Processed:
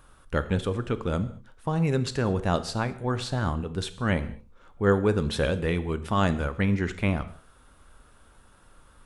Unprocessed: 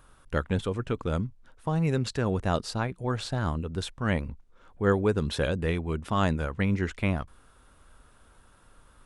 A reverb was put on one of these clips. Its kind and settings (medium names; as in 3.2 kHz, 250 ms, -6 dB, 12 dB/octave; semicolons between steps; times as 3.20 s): gated-style reverb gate 250 ms falling, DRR 11 dB; trim +1.5 dB